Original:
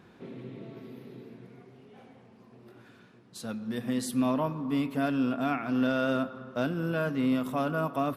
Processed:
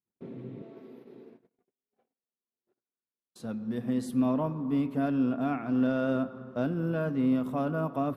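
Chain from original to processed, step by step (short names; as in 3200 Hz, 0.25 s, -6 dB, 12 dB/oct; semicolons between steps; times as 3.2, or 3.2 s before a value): 0.62–3.4 HPF 310 Hz 12 dB/oct; gate -50 dBFS, range -45 dB; tilt shelf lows +6 dB, about 1200 Hz; gain -4.5 dB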